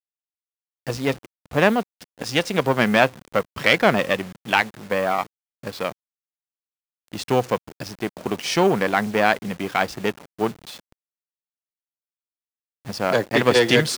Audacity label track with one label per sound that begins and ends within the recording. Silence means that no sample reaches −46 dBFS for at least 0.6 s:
0.870000	5.920000	sound
7.080000	10.920000	sound